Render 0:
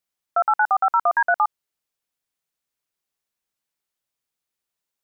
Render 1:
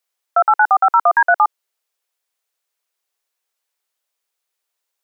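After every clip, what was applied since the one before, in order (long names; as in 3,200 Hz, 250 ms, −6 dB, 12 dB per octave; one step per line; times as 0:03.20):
inverse Chebyshev high-pass filter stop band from 200 Hz, stop band 40 dB
level +6 dB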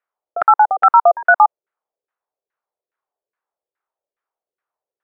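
auto-filter low-pass saw down 2.4 Hz 380–1,700 Hz
level −2 dB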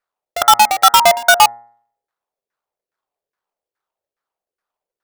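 each half-wave held at its own peak
hum removal 117.4 Hz, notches 18
level −1.5 dB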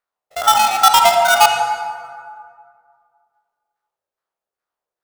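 spectrum averaged block by block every 50 ms
convolution reverb RT60 2.2 s, pre-delay 43 ms, DRR 4 dB
level −1 dB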